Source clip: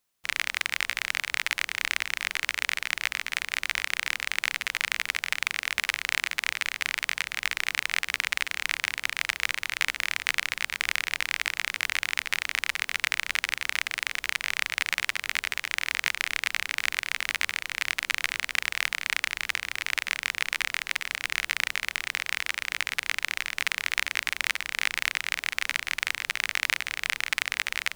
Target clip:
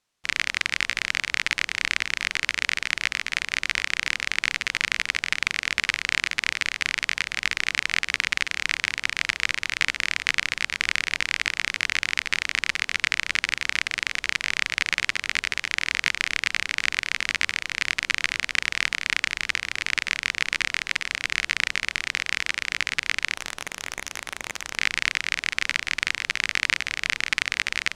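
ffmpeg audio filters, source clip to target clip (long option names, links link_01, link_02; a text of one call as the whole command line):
ffmpeg -i in.wav -filter_complex "[0:a]aeval=exprs='0.708*(cos(1*acos(clip(val(0)/0.708,-1,1)))-cos(1*PI/2))+0.0316*(cos(6*acos(clip(val(0)/0.708,-1,1)))-cos(6*PI/2))':channel_layout=same,asettb=1/sr,asplit=3[link_01][link_02][link_03];[link_01]atrim=end=23.364[link_04];[link_02]atrim=start=23.36:end=24.77,asetpts=PTS-STARTPTS,afade=type=in:duration=0.004:curve=qsin,afade=type=out:start_time=1.406:duration=0.004:curve=qsin,aeval=exprs='(mod(7.08*val(0)+1,2)-1)/7.08':channel_layout=same[link_05];[link_03]atrim=start=24.766[link_06];[link_04][link_05]acrossfade=duration=0.004:curve1=hsin:curve2=qsin[link_07];[link_07][link_06]acrossfade=duration=0.004:curve1=qsin:curve2=hsin,lowpass=7200,volume=3.5dB" out.wav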